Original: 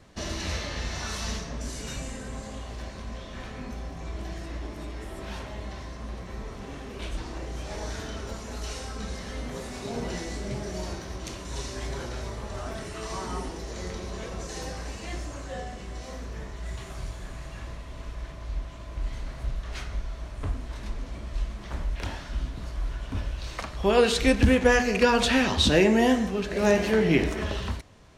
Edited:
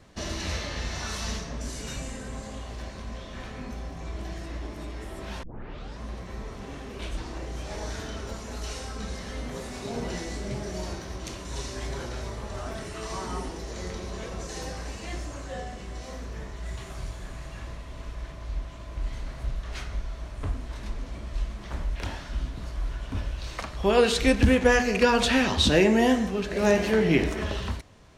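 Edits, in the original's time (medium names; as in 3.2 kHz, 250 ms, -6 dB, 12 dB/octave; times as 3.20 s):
5.43 s: tape start 0.57 s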